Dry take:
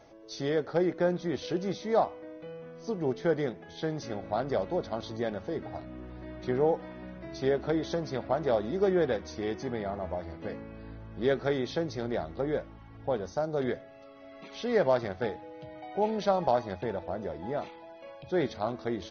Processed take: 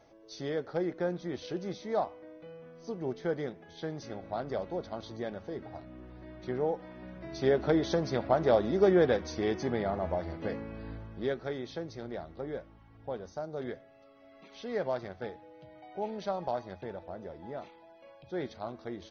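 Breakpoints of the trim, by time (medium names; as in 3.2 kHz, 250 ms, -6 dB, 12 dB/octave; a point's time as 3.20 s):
6.79 s -5 dB
7.65 s +2.5 dB
10.96 s +2.5 dB
11.37 s -7.5 dB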